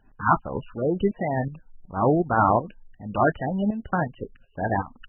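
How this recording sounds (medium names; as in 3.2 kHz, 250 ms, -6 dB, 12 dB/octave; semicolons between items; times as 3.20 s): tremolo saw up 2.7 Hz, depth 75%; MP3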